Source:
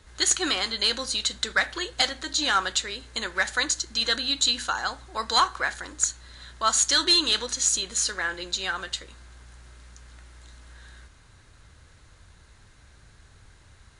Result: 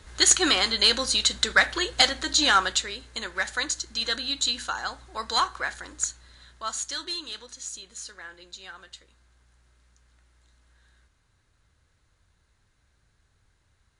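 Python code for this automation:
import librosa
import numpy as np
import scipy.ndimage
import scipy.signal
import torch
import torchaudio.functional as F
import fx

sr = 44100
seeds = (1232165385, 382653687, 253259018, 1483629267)

y = fx.gain(x, sr, db=fx.line((2.46, 4.0), (3.1, -3.0), (5.96, -3.0), (7.25, -14.0)))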